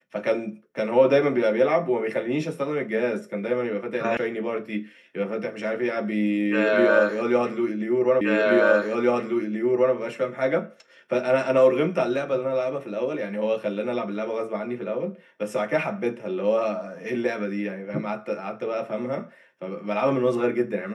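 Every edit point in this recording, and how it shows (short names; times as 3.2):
4.17 sound cut off
8.21 repeat of the last 1.73 s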